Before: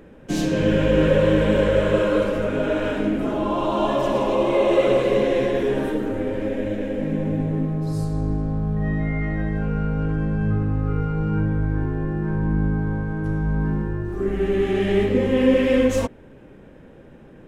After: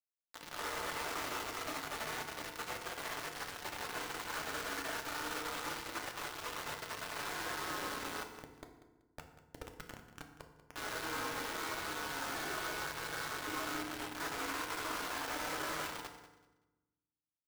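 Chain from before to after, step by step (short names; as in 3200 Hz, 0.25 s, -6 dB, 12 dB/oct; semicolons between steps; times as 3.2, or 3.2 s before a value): spectral gate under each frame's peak -20 dB weak; steep high-pass 340 Hz 36 dB/oct; spectral gate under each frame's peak -10 dB weak; dynamic EQ 1300 Hz, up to +3 dB, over -55 dBFS, Q 0.74; AGC gain up to 13 dB; limiter -20 dBFS, peak gain reduction 7.5 dB; compressor 2.5:1, threshold -46 dBFS, peak gain reduction 13 dB; ladder low-pass 2000 Hz, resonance 20%; 8.23–10.76 Schmitt trigger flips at -50.5 dBFS; bit-crush 8-bit; feedback echo 0.19 s, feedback 25%, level -15 dB; FDN reverb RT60 1.1 s, low-frequency decay 1.45×, high-frequency decay 0.6×, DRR 4 dB; gain +8 dB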